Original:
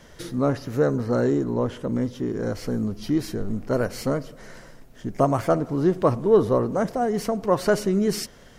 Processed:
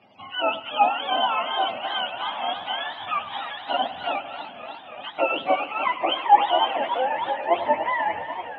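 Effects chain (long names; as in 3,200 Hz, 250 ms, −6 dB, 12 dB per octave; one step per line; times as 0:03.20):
frequency axis turned over on the octave scale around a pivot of 610 Hz
loudspeaker in its box 360–3,300 Hz, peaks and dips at 390 Hz −5 dB, 780 Hz +6 dB, 1,600 Hz −8 dB, 3,100 Hz +9 dB
delay that swaps between a low-pass and a high-pass 100 ms, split 2,200 Hz, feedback 57%, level −13.5 dB
feedback echo with a swinging delay time 294 ms, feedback 79%, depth 164 cents, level −12 dB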